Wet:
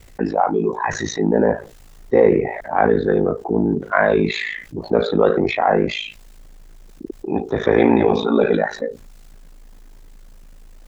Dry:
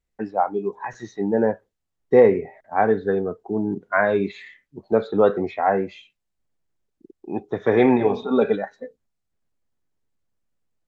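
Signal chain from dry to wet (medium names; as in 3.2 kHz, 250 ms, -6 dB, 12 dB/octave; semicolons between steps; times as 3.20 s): ring modulator 27 Hz; transient shaper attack -2 dB, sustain +3 dB; level flattener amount 50%; trim +2 dB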